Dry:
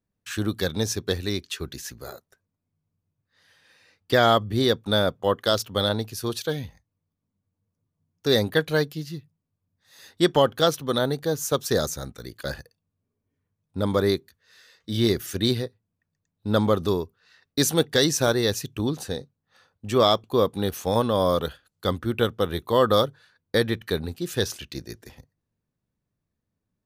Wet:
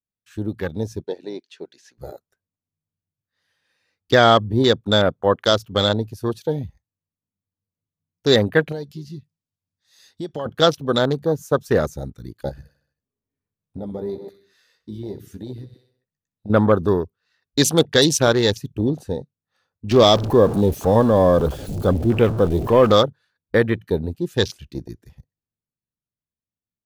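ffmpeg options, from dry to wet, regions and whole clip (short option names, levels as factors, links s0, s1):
-filter_complex "[0:a]asettb=1/sr,asplit=3[s0][s1][s2];[s0]atrim=end=1.034[s3];[s1]atrim=start=1.03:end=1.98,asetpts=PTS-STARTPTS,afade=t=in:d=0.004:c=qsin,afade=t=out:st=0.946:d=0.004:c=qsin,highpass=390,lowpass=5600,equalizer=f=1200:w=6.7:g=-10.5[s4];[s2]atrim=start=1.976[s5];[s3][s4]acrossfade=d=0.004:c1=hsin:c2=qsin[s6];[s6][s5]acrossfade=d=0.004:c1=qsin:c2=hsin,asettb=1/sr,asplit=3[s7][s8][s9];[s7]atrim=end=8.724[s10];[s8]atrim=start=8.72:end=10.46,asetpts=PTS-STARTPTS,afade=t=in:d=0.004:c=qsin,afade=t=out:st=1.736:d=0.004:c=qsin,equalizer=f=5200:w=0.54:g=10.5,acompressor=threshold=0.0178:ratio=2.5:attack=3.2:release=140:knee=1:detection=peak[s11];[s9]atrim=start=10.456[s12];[s10][s11]acrossfade=d=0.004:c1=hsin:c2=qsin[s13];[s13][s12]acrossfade=d=0.004:c1=qsin:c2=hsin,asettb=1/sr,asplit=3[s14][s15][s16];[s14]atrim=end=12.494[s17];[s15]atrim=start=12.49:end=16.5,asetpts=PTS-STARTPTS,afade=t=in:d=0.004:c=qsin,afade=t=out:st=4.006:d=0.004:c=qsin,aecho=1:1:63|126|189|252|315|378:0.141|0.0833|0.0492|0.029|0.0171|0.0101,atrim=end_sample=176841,acompressor=threshold=0.01:ratio=3:attack=3.2:release=140:knee=1:detection=peak,asplit=2[s18][s19];[s19]adelay=15,volume=0.447[s20];[s18][s20]amix=inputs=2:normalize=0,atrim=end_sample=176841[s21];[s16]atrim=start=16.496[s22];[s17][s21]acrossfade=d=0.004:c1=hsin:c2=qsin[s23];[s23][s22]acrossfade=d=0.004:c1=qsin:c2=hsin,asettb=1/sr,asplit=3[s24][s25][s26];[s24]atrim=end=19.914[s27];[s25]atrim=start=19.91:end=22.92,asetpts=PTS-STARTPTS,afade=t=in:d=0.004:c=qsin,afade=t=out:st=3.006:d=0.004:c=qsin,aeval=exprs='val(0)+0.5*0.0668*sgn(val(0))':c=same,equalizer=f=1500:t=o:w=1.1:g=-7.5[s28];[s26]atrim=start=22.916[s29];[s27][s28]acrossfade=d=0.004:c1=hsin:c2=qsin[s30];[s30][s29]acrossfade=d=0.004:c1=qsin:c2=hsin,afwtdn=0.0251,dynaudnorm=f=200:g=17:m=2.82"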